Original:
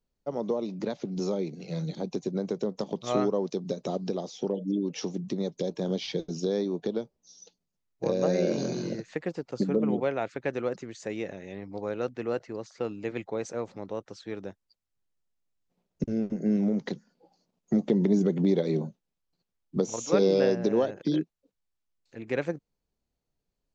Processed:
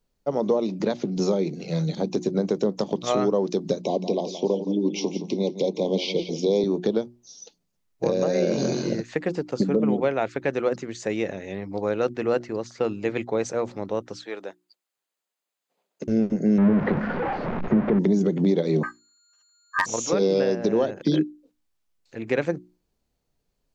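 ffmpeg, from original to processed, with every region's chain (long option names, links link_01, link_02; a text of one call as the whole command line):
ffmpeg -i in.wav -filter_complex "[0:a]asettb=1/sr,asplit=3[link_01][link_02][link_03];[link_01]atrim=end=3.824[link_04];[link_02]atrim=start=3.82:end=6.64,asetpts=PTS-STARTPTS,afade=type=in:duration=0.004:curve=qsin,afade=type=out:start_time=2.816:duration=0.004:curve=qsin,asuperstop=centerf=1500:order=20:qfactor=1.6,acrossover=split=170 6500:gain=0.224 1 0.2[link_05][link_06][link_07];[link_05][link_06][link_07]amix=inputs=3:normalize=0,aecho=1:1:171|342|513:0.266|0.0772|0.0224,atrim=end_sample=124362[link_08];[link_03]atrim=start=6.636[link_09];[link_04][link_08]acrossfade=duration=0.004:curve1=hsin:curve2=qsin[link_10];[link_10][link_09]acrossfade=duration=0.004:curve1=qsin:curve2=hsin,asettb=1/sr,asplit=3[link_11][link_12][link_13];[link_11]atrim=end=14.244[link_14];[link_12]atrim=start=14.24:end=16.08,asetpts=PTS-STARTPTS,afade=type=in:duration=0.004:curve=qsin,afade=type=out:start_time=1.836:duration=0.004:curve=qsin,highpass=490,bandreject=frequency=5600:width=8.6[link_15];[link_13]atrim=start=16.076[link_16];[link_14][link_15]acrossfade=duration=0.004:curve1=hsin:curve2=qsin[link_17];[link_17][link_16]acrossfade=duration=0.004:curve1=qsin:curve2=hsin,asettb=1/sr,asplit=3[link_18][link_19][link_20];[link_18]atrim=end=16.584[link_21];[link_19]atrim=start=16.58:end=17.99,asetpts=PTS-STARTPTS,afade=type=in:duration=0.004:curve=qsin,afade=type=out:start_time=1.406:duration=0.004:curve=qsin,aeval=exprs='val(0)+0.5*0.0473*sgn(val(0))':channel_layout=same,lowpass=frequency=1900:width=0.5412,lowpass=frequency=1900:width=1.3066,aemphasis=mode=production:type=cd[link_22];[link_20]atrim=start=17.986[link_23];[link_21][link_22]acrossfade=duration=0.004:curve1=hsin:curve2=qsin[link_24];[link_24][link_23]acrossfade=duration=0.004:curve1=qsin:curve2=hsin,asettb=1/sr,asplit=3[link_25][link_26][link_27];[link_25]atrim=end=18.834[link_28];[link_26]atrim=start=18.83:end=19.86,asetpts=PTS-STARTPTS,afade=type=in:duration=0.004:curve=qsin,afade=type=out:start_time=1.026:duration=0.004:curve=qsin,aeval=exprs='val(0)+0.000562*sin(2*PI*5700*n/s)':channel_layout=same,aeval=exprs='val(0)*sin(2*PI*1400*n/s)':channel_layout=same,aeval=exprs='0.141*(abs(mod(val(0)/0.141+3,4)-2)-1)':channel_layout=same[link_29];[link_27]atrim=start=19.856[link_30];[link_28][link_29]acrossfade=duration=0.004:curve1=hsin:curve2=qsin[link_31];[link_31][link_30]acrossfade=duration=0.004:curve1=qsin:curve2=hsin,bandreject=frequency=60:width_type=h:width=6,bandreject=frequency=120:width_type=h:width=6,bandreject=frequency=180:width_type=h:width=6,bandreject=frequency=240:width_type=h:width=6,bandreject=frequency=300:width_type=h:width=6,bandreject=frequency=360:width_type=h:width=6,alimiter=limit=-19dB:level=0:latency=1:release=258,volume=7.5dB" out.wav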